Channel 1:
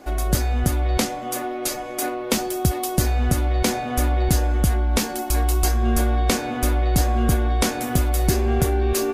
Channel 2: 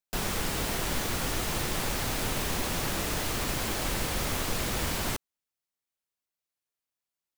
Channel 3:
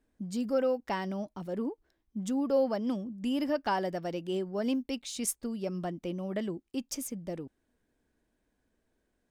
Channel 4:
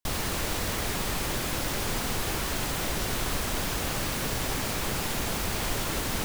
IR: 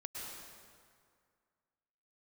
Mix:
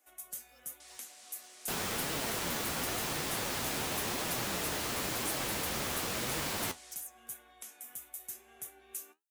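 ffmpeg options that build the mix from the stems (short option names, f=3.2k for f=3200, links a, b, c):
-filter_complex "[0:a]equalizer=f=4.6k:w=2.6:g=-13,acrossover=split=370[a][b];[b]acompressor=threshold=-22dB:ratio=6[c];[a][c]amix=inputs=2:normalize=0,volume=-8dB[d];[1:a]highpass=f=180:p=1,adelay=1550,volume=1dB[e];[2:a]crystalizer=i=2.5:c=0,volume=-14dB[f];[3:a]lowpass=f=9k:w=0.5412,lowpass=f=9k:w=1.3066,adelay=750,volume=-11dB[g];[d][f][g]amix=inputs=3:normalize=0,aderivative,alimiter=limit=-22.5dB:level=0:latency=1:release=327,volume=0dB[h];[e][h]amix=inputs=2:normalize=0,flanger=delay=6:depth=8.8:regen=59:speed=0.94:shape=triangular"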